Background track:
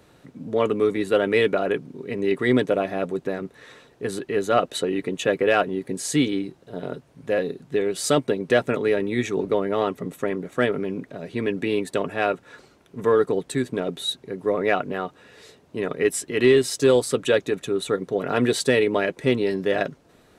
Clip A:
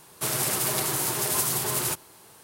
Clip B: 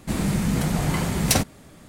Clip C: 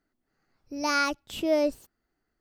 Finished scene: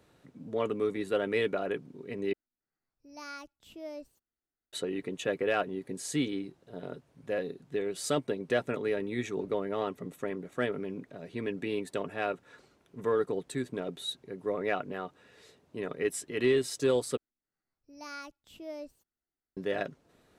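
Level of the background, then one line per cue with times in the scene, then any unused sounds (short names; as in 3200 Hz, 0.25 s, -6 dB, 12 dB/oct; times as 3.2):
background track -9.5 dB
2.33 replace with C -18 dB
17.17 replace with C -17.5 dB
not used: A, B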